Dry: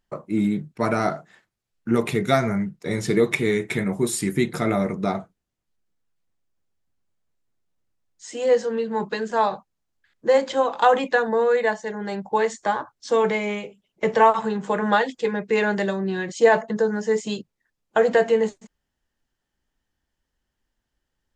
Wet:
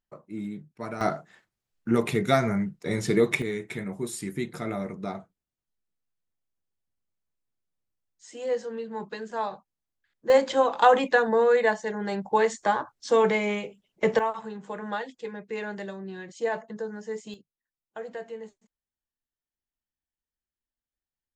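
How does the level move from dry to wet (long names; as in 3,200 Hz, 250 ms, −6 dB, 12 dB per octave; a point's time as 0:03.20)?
−13 dB
from 0:01.01 −2.5 dB
from 0:03.42 −9.5 dB
from 0:10.30 −1 dB
from 0:14.19 −12.5 dB
from 0:17.34 −19.5 dB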